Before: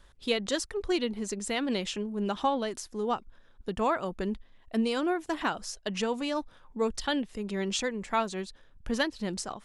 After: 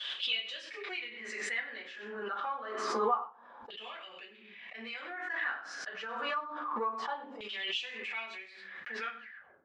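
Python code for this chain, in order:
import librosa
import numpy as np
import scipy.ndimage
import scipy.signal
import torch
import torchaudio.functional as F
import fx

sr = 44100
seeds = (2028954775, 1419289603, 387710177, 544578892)

p1 = fx.tape_stop_end(x, sr, length_s=0.76)
p2 = fx.leveller(p1, sr, passes=1)
p3 = fx.bandpass_edges(p2, sr, low_hz=240.0, high_hz=6100.0)
p4 = p3 + fx.echo_single(p3, sr, ms=97, db=-13.5, dry=0)
p5 = fx.room_shoebox(p4, sr, seeds[0], volume_m3=140.0, walls='furnished', distance_m=4.1)
p6 = fx.filter_lfo_bandpass(p5, sr, shape='saw_down', hz=0.27, low_hz=900.0, high_hz=3200.0, q=6.1)
p7 = fx.pre_swell(p6, sr, db_per_s=33.0)
y = F.gain(torch.from_numpy(p7), -7.5).numpy()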